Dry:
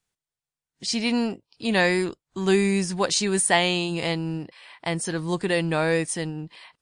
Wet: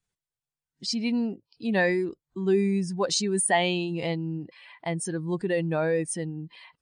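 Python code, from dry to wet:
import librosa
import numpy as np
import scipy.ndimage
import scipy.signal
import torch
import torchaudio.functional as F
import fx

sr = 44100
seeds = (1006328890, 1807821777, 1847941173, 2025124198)

y = fx.spec_expand(x, sr, power=1.6)
y = F.gain(torch.from_numpy(y), -2.5).numpy()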